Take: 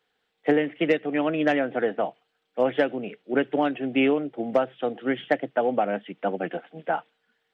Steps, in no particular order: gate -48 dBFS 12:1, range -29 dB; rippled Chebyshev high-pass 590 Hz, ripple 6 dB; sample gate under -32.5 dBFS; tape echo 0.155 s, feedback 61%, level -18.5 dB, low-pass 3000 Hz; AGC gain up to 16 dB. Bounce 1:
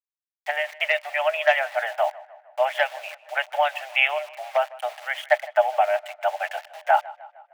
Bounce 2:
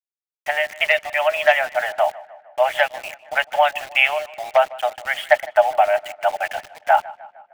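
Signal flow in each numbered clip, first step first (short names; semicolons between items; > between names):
gate > AGC > sample gate > tape echo > rippled Chebyshev high-pass; rippled Chebyshev high-pass > AGC > sample gate > gate > tape echo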